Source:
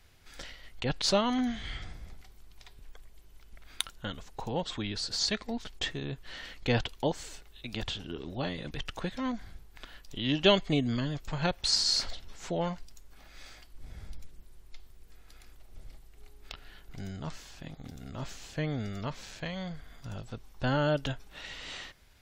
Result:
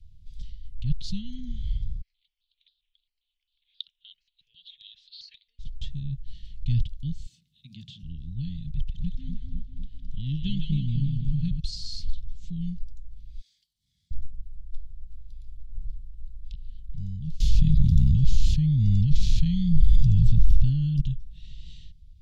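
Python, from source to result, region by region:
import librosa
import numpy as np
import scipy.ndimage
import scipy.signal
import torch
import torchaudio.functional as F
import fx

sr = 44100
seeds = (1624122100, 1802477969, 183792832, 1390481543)

y = fx.chain(x, sr, fx.cheby2_highpass(hz=230.0, order=4, stop_db=50),
    fx.high_shelf_res(hz=5700.0, db=-14.0, q=3.0),
    fx.phaser_held(hz=7.5, low_hz=970.0, high_hz=2200.0), at=(2.01, 5.59))
y = fx.chain(y, sr, fx.highpass(hz=150.0, slope=24),
    fx.hum_notches(base_hz=60, count=7), at=(7.26, 8.03))
y = fx.chain(y, sr, fx.high_shelf(hz=4900.0, db=-8.5),
    fx.echo_split(split_hz=740.0, low_ms=250, high_ms=157, feedback_pct=52, wet_db=-5.0), at=(8.69, 11.6))
y = fx.chain(y, sr, fx.highpass(hz=810.0, slope=12),
    fx.peak_eq(hz=2600.0, db=-8.5, octaves=0.34), at=(13.41, 14.11))
y = fx.chain(y, sr, fx.notch(hz=7900.0, q=12.0),
    fx.env_flatten(amount_pct=100), at=(17.4, 21.01))
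y = scipy.signal.sosfilt(scipy.signal.cheby1(3, 1.0, [170.0, 3400.0], 'bandstop', fs=sr, output='sos'), y)
y = fx.riaa(y, sr, side='playback')
y = F.gain(torch.from_numpy(y), -3.5).numpy()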